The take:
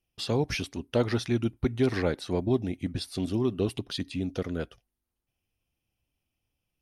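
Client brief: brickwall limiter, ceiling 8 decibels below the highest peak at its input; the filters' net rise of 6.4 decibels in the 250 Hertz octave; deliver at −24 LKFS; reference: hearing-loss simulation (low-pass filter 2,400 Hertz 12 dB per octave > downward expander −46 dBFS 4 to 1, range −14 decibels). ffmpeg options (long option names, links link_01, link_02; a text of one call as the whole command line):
ffmpeg -i in.wav -af "equalizer=frequency=250:width_type=o:gain=7.5,alimiter=limit=-16.5dB:level=0:latency=1,lowpass=2400,agate=range=-14dB:threshold=-46dB:ratio=4,volume=4.5dB" out.wav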